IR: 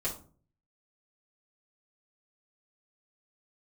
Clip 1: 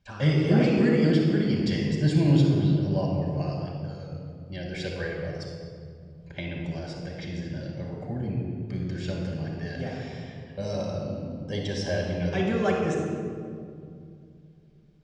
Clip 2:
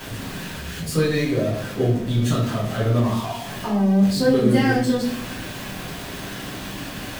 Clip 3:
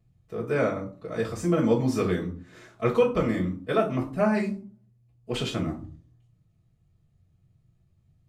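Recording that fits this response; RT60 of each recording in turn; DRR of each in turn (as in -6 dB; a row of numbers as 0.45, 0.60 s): 3; 2.4, 0.65, 0.45 s; -1.5, -8.0, -7.0 dB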